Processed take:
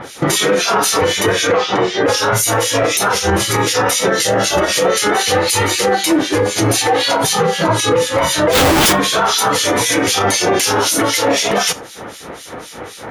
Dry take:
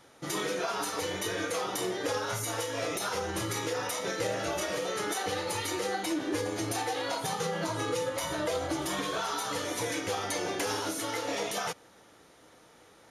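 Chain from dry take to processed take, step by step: 1.47–2.05 s: Bessel low-pass 4.1 kHz, order 4; 4.09–4.69 s: band-stop 2.4 kHz, Q 6.4; in parallel at 0 dB: compression, threshold -45 dBFS, peak gain reduction 16.5 dB; on the sum: harmonic tremolo 3.9 Hz, depth 100%, crossover 2.3 kHz; Chebyshev shaper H 6 -44 dB, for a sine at -20 dBFS; 8.53–8.93 s: Schmitt trigger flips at -44 dBFS; on a send at -14 dB: reverberation, pre-delay 3 ms; on the sum: loudness maximiser +29 dB; trim -4.5 dB

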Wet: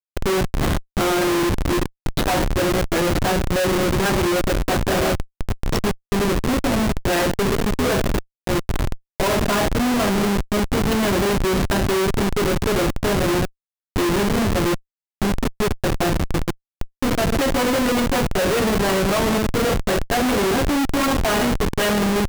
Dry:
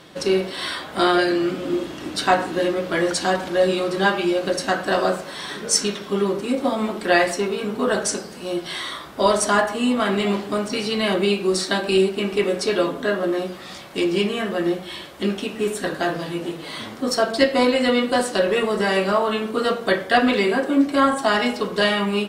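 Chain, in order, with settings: low-pass 4.4 kHz 24 dB/octave; Schmitt trigger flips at -22 dBFS; trim +3 dB

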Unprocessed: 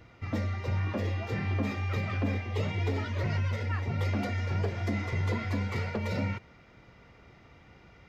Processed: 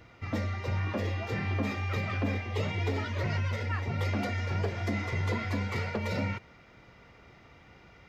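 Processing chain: bass shelf 380 Hz -3.5 dB; trim +2 dB

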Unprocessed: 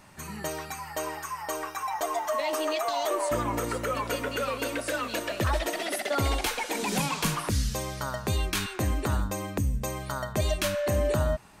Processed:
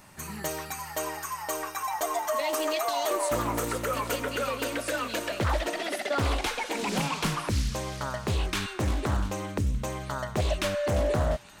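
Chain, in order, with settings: treble shelf 9.3 kHz +9.5 dB, from 4.16 s +2.5 dB, from 5.39 s -9 dB; feedback echo behind a high-pass 348 ms, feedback 59%, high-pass 2.3 kHz, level -12 dB; loudspeaker Doppler distortion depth 0.44 ms

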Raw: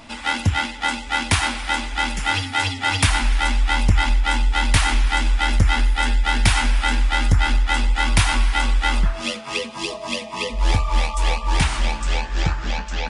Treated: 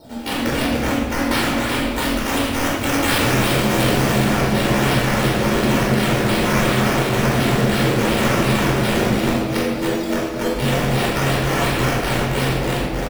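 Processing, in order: integer overflow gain 16.5 dB; delay 268 ms -5.5 dB; compression 3:1, threshold -22 dBFS, peak gain reduction 4.5 dB; high-pass 270 Hz 6 dB/octave; resampled via 32 kHz; Chebyshev band-stop 740–8800 Hz, order 4; peaking EQ 1.2 kHz -7.5 dB 1.3 oct; decimation with a swept rate 9×, swing 60% 2.8 Hz; 1.87–4.24 s: treble shelf 5.2 kHz +4.5 dB; simulated room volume 1400 m³, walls mixed, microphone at 4.5 m; trim +4.5 dB

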